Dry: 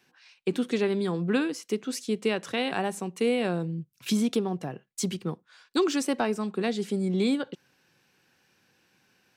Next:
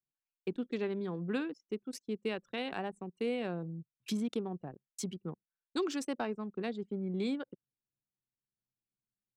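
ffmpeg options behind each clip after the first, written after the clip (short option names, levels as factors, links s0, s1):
-af "anlmdn=10,volume=0.355"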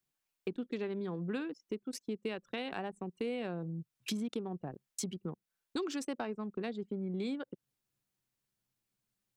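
-af "acompressor=threshold=0.00398:ratio=2.5,volume=2.66"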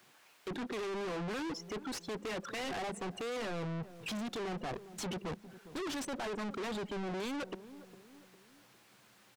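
-filter_complex "[0:a]asplit=2[s0][s1];[s1]highpass=f=720:p=1,volume=70.8,asoftclip=type=tanh:threshold=0.0708[s2];[s0][s2]amix=inputs=2:normalize=0,lowpass=f=1600:p=1,volume=0.501,asplit=2[s3][s4];[s4]adelay=405,lowpass=f=860:p=1,volume=0.0668,asplit=2[s5][s6];[s6]adelay=405,lowpass=f=860:p=1,volume=0.47,asplit=2[s7][s8];[s8]adelay=405,lowpass=f=860:p=1,volume=0.47[s9];[s3][s5][s7][s9]amix=inputs=4:normalize=0,asoftclip=type=tanh:threshold=0.0106,volume=1.33"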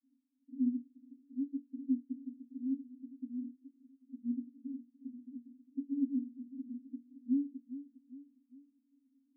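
-af "asuperpass=centerf=260:order=12:qfactor=5.6,volume=3.76"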